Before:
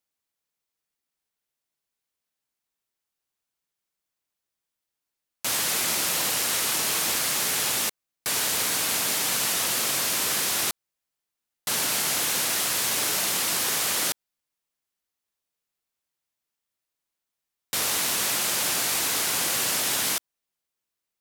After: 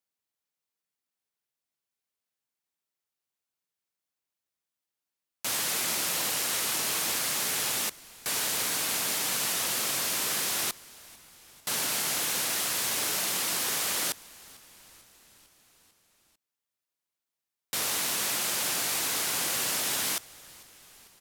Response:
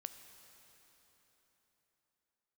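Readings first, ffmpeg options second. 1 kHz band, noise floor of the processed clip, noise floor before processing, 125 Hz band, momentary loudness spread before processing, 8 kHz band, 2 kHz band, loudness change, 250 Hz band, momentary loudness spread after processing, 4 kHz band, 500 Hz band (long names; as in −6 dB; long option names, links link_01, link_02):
−4.0 dB, below −85 dBFS, below −85 dBFS, −4.5 dB, 5 LU, −4.0 dB, −4.0 dB, −4.0 dB, −4.0 dB, 4 LU, −4.0 dB, −4.0 dB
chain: -filter_complex "[0:a]highpass=72,asplit=6[link_01][link_02][link_03][link_04][link_05][link_06];[link_02]adelay=447,afreqshift=-120,volume=-23dB[link_07];[link_03]adelay=894,afreqshift=-240,volume=-26.9dB[link_08];[link_04]adelay=1341,afreqshift=-360,volume=-30.8dB[link_09];[link_05]adelay=1788,afreqshift=-480,volume=-34.6dB[link_10];[link_06]adelay=2235,afreqshift=-600,volume=-38.5dB[link_11];[link_01][link_07][link_08][link_09][link_10][link_11]amix=inputs=6:normalize=0,volume=-4dB"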